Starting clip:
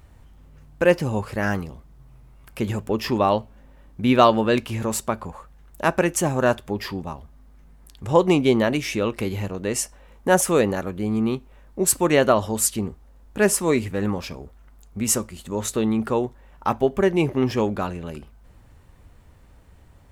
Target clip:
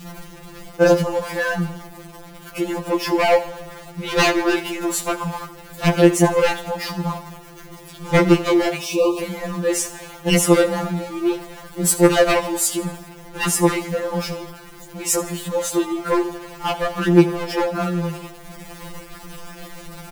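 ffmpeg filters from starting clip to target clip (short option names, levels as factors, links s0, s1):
-filter_complex "[0:a]aeval=exprs='val(0)+0.5*0.0335*sgn(val(0))':c=same,adynamicequalizer=threshold=0.0224:dfrequency=750:dqfactor=1:tfrequency=750:tqfactor=1:attack=5:release=100:ratio=0.375:range=3:mode=boostabove:tftype=bell,aeval=exprs='0.299*(abs(mod(val(0)/0.299+3,4)-2)-1)':c=same,asplit=3[s0][s1][s2];[s0]afade=t=out:st=8.77:d=0.02[s3];[s1]asuperstop=centerf=1700:order=20:qfactor=1.5,afade=t=in:st=8.77:d=0.02,afade=t=out:st=9.19:d=0.02[s4];[s2]afade=t=in:st=9.19:d=0.02[s5];[s3][s4][s5]amix=inputs=3:normalize=0,aecho=1:1:80|160|240|320|400:0.141|0.0763|0.0412|0.0222|0.012,afftfilt=real='re*2.83*eq(mod(b,8),0)':imag='im*2.83*eq(mod(b,8),0)':win_size=2048:overlap=0.75,volume=1.41"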